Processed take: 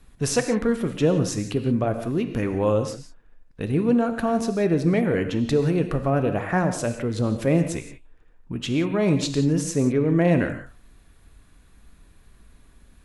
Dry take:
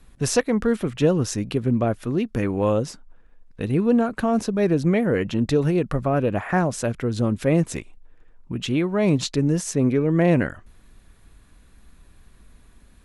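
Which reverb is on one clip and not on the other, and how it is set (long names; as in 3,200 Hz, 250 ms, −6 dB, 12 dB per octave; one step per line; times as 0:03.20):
reverb whose tail is shaped and stops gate 200 ms flat, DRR 7.5 dB
level −1.5 dB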